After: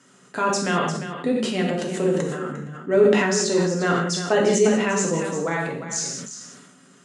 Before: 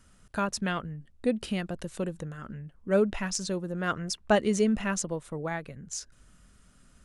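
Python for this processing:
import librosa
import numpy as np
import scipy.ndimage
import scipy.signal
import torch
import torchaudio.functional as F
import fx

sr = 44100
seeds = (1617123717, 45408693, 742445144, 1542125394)

p1 = scipy.signal.sosfilt(scipy.signal.cheby1(4, 1.0, 160.0, 'highpass', fs=sr, output='sos'), x)
p2 = fx.peak_eq(p1, sr, hz=7200.0, db=7.0, octaves=0.39)
p3 = fx.hum_notches(p2, sr, base_hz=50, count=4)
p4 = fx.over_compress(p3, sr, threshold_db=-32.0, ratio=-1.0)
p5 = p3 + F.gain(torch.from_numpy(p4), -1.0).numpy()
p6 = fx.air_absorb(p5, sr, metres=53.0)
p7 = fx.small_body(p6, sr, hz=(380.0, 1900.0), ring_ms=95, db=9)
p8 = p7 + fx.echo_single(p7, sr, ms=351, db=-11.0, dry=0)
p9 = fx.rev_gated(p8, sr, seeds[0], gate_ms=230, shape='falling', drr_db=-1.5)
y = fx.sustainer(p9, sr, db_per_s=39.0)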